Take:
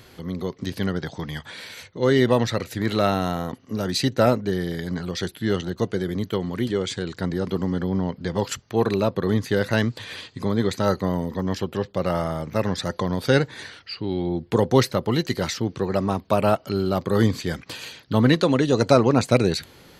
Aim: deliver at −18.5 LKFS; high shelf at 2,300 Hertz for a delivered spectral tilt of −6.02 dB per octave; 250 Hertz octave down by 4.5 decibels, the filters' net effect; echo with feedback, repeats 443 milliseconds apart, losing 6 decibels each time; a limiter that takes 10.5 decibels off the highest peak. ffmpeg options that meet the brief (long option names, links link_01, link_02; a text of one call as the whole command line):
ffmpeg -i in.wav -af "equalizer=frequency=250:width_type=o:gain=-6,highshelf=frequency=2300:gain=-8,alimiter=limit=-15dB:level=0:latency=1,aecho=1:1:443|886|1329|1772|2215|2658:0.501|0.251|0.125|0.0626|0.0313|0.0157,volume=9.5dB" out.wav